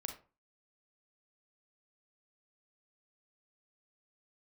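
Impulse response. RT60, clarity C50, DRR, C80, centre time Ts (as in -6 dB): 0.35 s, 8.5 dB, 4.5 dB, 14.5 dB, 16 ms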